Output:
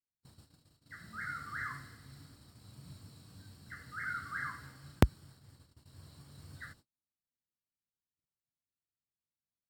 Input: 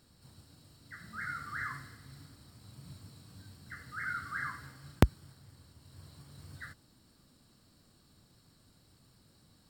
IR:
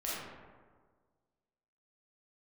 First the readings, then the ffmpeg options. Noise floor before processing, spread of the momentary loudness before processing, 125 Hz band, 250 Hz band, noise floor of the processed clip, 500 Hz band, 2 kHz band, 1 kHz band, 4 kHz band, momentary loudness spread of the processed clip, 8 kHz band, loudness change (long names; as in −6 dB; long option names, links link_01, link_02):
−66 dBFS, 25 LU, −1.5 dB, −1.5 dB, below −85 dBFS, −1.5 dB, −1.5 dB, −1.5 dB, −1.5 dB, 24 LU, −2.0 dB, −1.0 dB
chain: -af "agate=range=-40dB:threshold=-57dB:ratio=16:detection=peak,volume=-1.5dB"